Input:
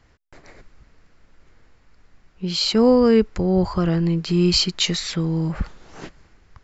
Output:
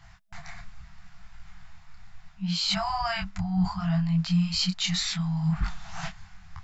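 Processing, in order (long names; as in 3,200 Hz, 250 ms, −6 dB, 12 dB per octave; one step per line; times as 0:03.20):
brick-wall band-stop 200–650 Hz
reversed playback
downward compressor 6 to 1, threshold −31 dBFS, peak gain reduction 15 dB
reversed playback
hollow resonant body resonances 230/3,600 Hz, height 7 dB
micro pitch shift up and down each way 25 cents
level +9 dB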